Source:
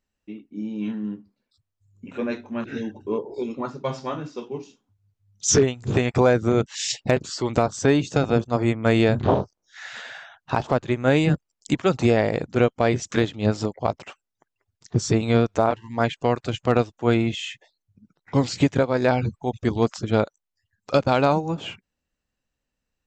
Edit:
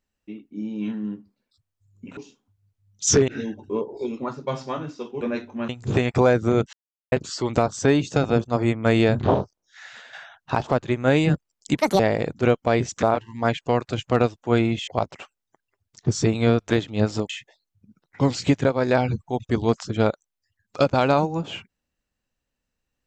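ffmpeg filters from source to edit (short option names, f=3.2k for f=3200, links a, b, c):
-filter_complex "[0:a]asplit=14[a][b][c][d][e][f][g][h][i][j][k][l][m][n];[a]atrim=end=2.172[o];[b]atrim=start=4.578:end=5.692[p];[c]atrim=start=2.648:end=4.582[q];[d]atrim=start=2.168:end=2.652[r];[e]atrim=start=5.688:end=6.73,asetpts=PTS-STARTPTS,afade=t=out:st=1.038:d=0.004:c=hsin[s];[f]atrim=start=6.73:end=7.12,asetpts=PTS-STARTPTS,volume=0[t];[g]atrim=start=7.12:end=10.13,asetpts=PTS-STARTPTS,afade=t=in:d=0.004:c=hsin,afade=t=out:st=2.23:d=0.78:silence=0.354813[u];[h]atrim=start=10.13:end=11.784,asetpts=PTS-STARTPTS,afade=t=in:d=0.004:c=hsin:silence=0.354813[v];[i]atrim=start=11.78:end=12.13,asetpts=PTS-STARTPTS,asetrate=71883,aresample=44100,atrim=end_sample=9469,asetpts=PTS-STARTPTS[w];[j]atrim=start=12.126:end=13.162[x];[k]atrim=start=15.578:end=17.432[y];[l]atrim=start=13.748:end=15.582[z];[m]atrim=start=13.158:end=13.752[aa];[n]atrim=start=17.428[ab];[o][p]acrossfade=d=0.004:c1=hsin:c2=hsin[ac];[ac][q]acrossfade=d=0.004:c1=hsin:c2=hsin[ad];[ad][r]acrossfade=d=0.004:c1=hsin:c2=hsin[ae];[s][t][u][v]concat=n=4:v=0:a=1[af];[ae][af]acrossfade=d=0.004:c1=hsin:c2=hsin[ag];[ag][w]acrossfade=d=0.004:c1=hsin:c2=hsin[ah];[ah][x]acrossfade=d=0.004:c1=hsin:c2=hsin[ai];[ai][y]acrossfade=d=0.004:c1=hsin:c2=hsin[aj];[aj][z]acrossfade=d=0.004:c1=hsin:c2=hsin[ak];[ak][aa]acrossfade=d=0.004:c1=hsin:c2=hsin[al];[al][ab]acrossfade=d=0.004:c1=hsin:c2=hsin"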